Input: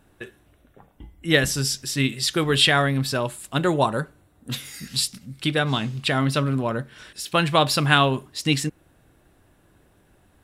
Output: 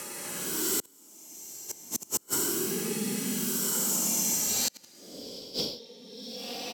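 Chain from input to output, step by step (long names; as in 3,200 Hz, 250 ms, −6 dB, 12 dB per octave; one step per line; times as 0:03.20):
feedback delay that plays each chunk backwards 102 ms, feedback 80%, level −9.5 dB
gate with flip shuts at −10 dBFS, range −36 dB
extreme stretch with random phases 22×, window 0.05 s, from 0:05.09
single-tap delay 261 ms −8 dB
gate with flip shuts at −21 dBFS, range −36 dB
low-pass filter 10,000 Hz 12 dB per octave
low-shelf EQ 140 Hz −11.5 dB
change of speed 1.55×
multiband upward and downward compressor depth 70%
level +8 dB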